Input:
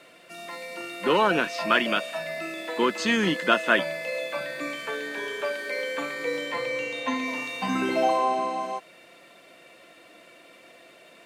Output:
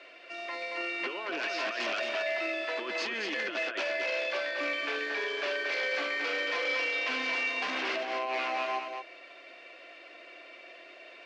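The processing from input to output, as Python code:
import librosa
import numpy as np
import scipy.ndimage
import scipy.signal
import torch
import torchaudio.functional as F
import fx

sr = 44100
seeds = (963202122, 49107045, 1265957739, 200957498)

y = fx.over_compress(x, sr, threshold_db=-26.0, ratio=-0.5)
y = 10.0 ** (-25.0 / 20.0) * (np.abs((y / 10.0 ** (-25.0 / 20.0) + 3.0) % 4.0 - 2.0) - 1.0)
y = fx.cabinet(y, sr, low_hz=350.0, low_slope=24, high_hz=4900.0, hz=(480.0, 890.0, 1300.0, 2500.0, 3700.0), db=(-6, -6, -3, 3, -5))
y = y + 10.0 ** (-5.5 / 20.0) * np.pad(y, (int(226 * sr / 1000.0), 0))[:len(y)]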